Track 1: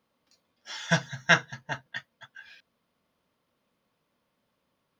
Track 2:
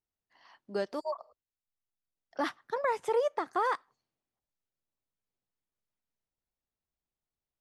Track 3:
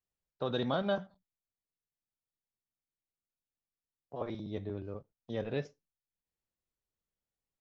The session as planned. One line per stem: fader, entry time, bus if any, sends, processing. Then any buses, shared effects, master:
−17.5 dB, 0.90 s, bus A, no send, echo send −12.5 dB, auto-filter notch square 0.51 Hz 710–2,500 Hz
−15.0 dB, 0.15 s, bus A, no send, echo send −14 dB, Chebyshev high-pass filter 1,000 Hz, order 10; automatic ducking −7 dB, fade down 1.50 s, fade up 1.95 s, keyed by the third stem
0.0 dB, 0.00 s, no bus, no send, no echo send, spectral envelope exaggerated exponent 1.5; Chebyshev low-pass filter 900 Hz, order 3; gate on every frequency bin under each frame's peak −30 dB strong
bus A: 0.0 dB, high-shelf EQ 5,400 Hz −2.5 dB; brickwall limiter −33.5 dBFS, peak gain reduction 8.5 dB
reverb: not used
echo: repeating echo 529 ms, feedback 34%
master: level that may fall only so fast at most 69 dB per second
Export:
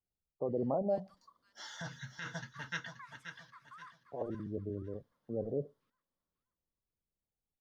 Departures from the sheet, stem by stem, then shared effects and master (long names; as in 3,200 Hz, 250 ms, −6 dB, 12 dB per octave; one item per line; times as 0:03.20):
stem 1 −17.5 dB → −6.0 dB
master: missing level that may fall only so fast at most 69 dB per second